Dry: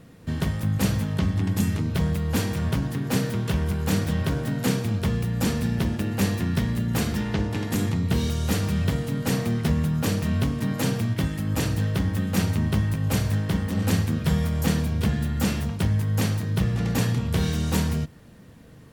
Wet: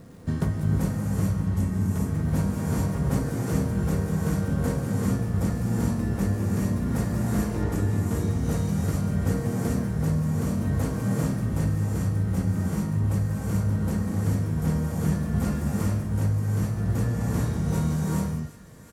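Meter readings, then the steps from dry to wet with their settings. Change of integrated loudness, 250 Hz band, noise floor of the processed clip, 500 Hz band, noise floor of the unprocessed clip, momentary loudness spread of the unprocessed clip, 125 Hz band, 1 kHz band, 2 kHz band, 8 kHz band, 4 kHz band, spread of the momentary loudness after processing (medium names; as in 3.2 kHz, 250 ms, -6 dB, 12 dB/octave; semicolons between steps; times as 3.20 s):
-1.0 dB, -1.0 dB, -31 dBFS, -1.5 dB, -47 dBFS, 2 LU, -0.5 dB, -2.0 dB, -6.5 dB, -4.5 dB, -12.5 dB, 1 LU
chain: low-pass 11 kHz 12 dB/octave; peaking EQ 3 kHz -11 dB 1.3 oct; gated-style reverb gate 460 ms rising, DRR -4 dB; dynamic bell 4 kHz, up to -5 dB, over -49 dBFS, Q 1.1; feedback echo behind a high-pass 765 ms, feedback 82%, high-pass 1.5 kHz, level -20 dB; crackle 270 per s -52 dBFS; doubling 20 ms -11 dB; gain riding within 10 dB 0.5 s; trim -6.5 dB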